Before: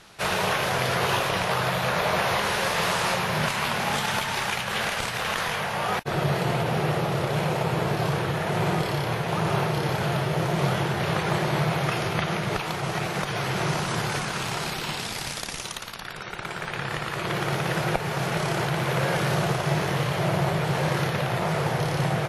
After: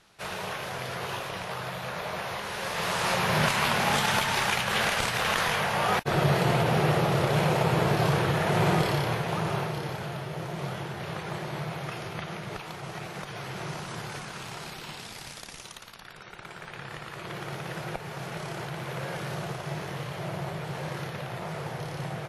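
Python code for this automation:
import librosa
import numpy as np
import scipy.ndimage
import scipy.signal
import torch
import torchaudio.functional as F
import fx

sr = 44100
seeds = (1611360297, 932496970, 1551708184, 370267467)

y = fx.gain(x, sr, db=fx.line((2.47, -10.0), (3.31, 1.0), (8.84, 1.0), (10.13, -10.0)))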